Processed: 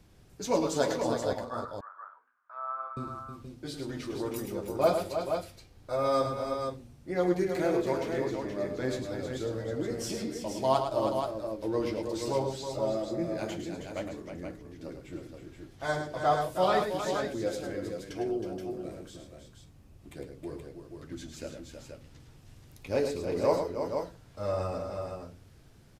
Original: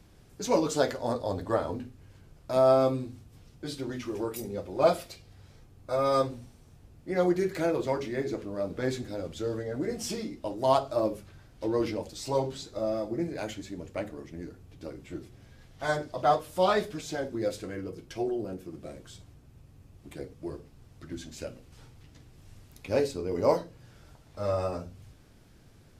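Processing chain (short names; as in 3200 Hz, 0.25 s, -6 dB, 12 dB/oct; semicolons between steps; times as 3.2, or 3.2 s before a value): 1.33–2.97 Butterworth band-pass 1300 Hz, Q 2.8; tapped delay 0.106/0.318/0.476 s -7.5/-8/-6.5 dB; gain -2.5 dB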